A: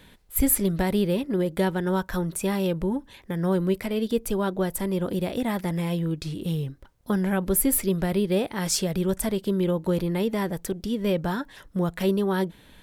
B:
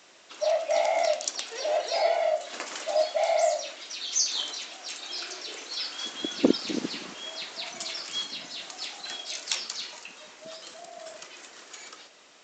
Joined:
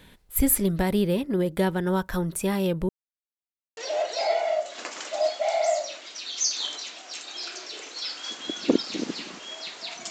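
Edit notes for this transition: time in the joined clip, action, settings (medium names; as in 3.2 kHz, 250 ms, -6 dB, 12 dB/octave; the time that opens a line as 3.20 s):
A
2.89–3.77 s: mute
3.77 s: go over to B from 1.52 s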